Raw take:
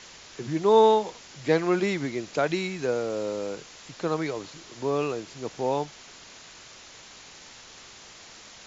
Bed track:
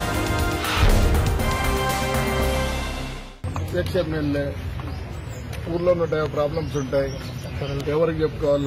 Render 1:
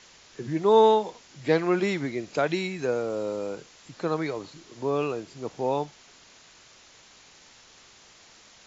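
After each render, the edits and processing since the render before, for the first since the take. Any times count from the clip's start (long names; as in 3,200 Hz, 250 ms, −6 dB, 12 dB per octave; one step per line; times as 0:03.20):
noise reduction from a noise print 6 dB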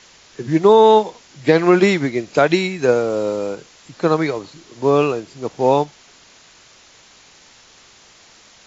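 boost into a limiter +13.5 dB
expander for the loud parts 1.5 to 1, over −24 dBFS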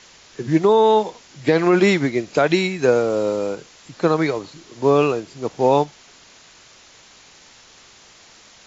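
brickwall limiter −5.5 dBFS, peak gain reduction 4.5 dB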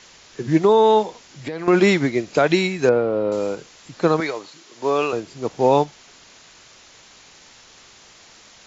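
0:01.03–0:01.68: downward compressor 5 to 1, threshold −26 dBFS
0:02.89–0:03.32: high-frequency loss of the air 380 metres
0:04.20–0:05.13: high-pass filter 650 Hz 6 dB per octave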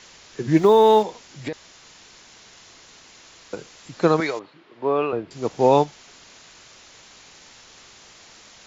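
0:00.57–0:01.03: mu-law and A-law mismatch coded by mu
0:01.53–0:03.53: fill with room tone
0:04.39–0:05.31: high-frequency loss of the air 450 metres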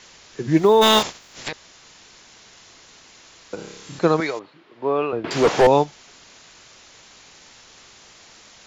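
0:00.81–0:01.51: ceiling on every frequency bin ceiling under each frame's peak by 28 dB
0:03.55–0:03.99: flutter between parallel walls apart 5 metres, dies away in 0.86 s
0:05.24–0:05.67: mid-hump overdrive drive 32 dB, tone 1,800 Hz, clips at −5.5 dBFS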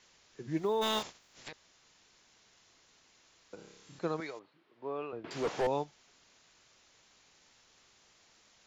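level −17 dB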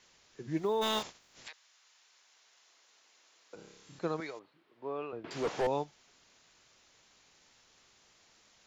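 0:01.46–0:03.54: high-pass filter 1,100 Hz → 350 Hz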